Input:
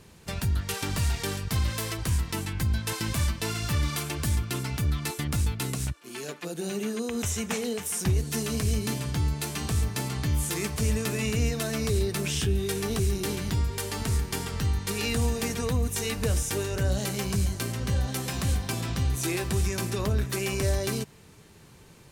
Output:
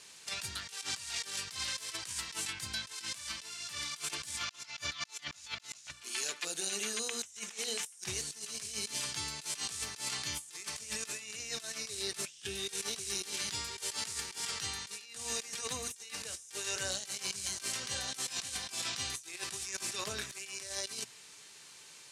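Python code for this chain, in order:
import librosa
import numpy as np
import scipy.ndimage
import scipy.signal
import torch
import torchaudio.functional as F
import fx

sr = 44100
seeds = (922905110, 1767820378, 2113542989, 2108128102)

y = fx.weighting(x, sr, curve='ITU-R 468')
y = fx.spec_box(y, sr, start_s=4.38, length_s=1.54, low_hz=530.0, high_hz=7400.0, gain_db=9)
y = fx.hum_notches(y, sr, base_hz=60, count=4)
y = fx.over_compress(y, sr, threshold_db=-31.0, ratio=-0.5)
y = y * librosa.db_to_amplitude(-8.5)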